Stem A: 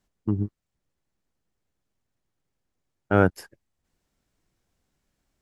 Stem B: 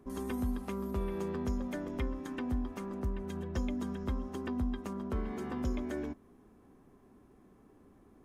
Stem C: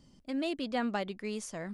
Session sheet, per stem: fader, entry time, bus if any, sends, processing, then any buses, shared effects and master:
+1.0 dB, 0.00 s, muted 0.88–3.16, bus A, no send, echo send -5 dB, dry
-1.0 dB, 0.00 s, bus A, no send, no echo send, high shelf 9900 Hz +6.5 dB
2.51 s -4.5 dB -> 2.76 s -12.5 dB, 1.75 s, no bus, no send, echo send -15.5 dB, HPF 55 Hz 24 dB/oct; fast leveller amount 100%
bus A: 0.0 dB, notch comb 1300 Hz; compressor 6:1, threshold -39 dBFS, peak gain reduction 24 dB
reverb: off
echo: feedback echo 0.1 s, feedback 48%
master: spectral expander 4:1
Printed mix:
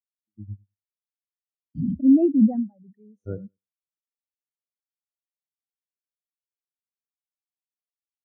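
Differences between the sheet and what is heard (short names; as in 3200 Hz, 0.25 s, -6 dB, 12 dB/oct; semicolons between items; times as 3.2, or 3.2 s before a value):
stem B: muted; stem C -4.5 dB -> +7.0 dB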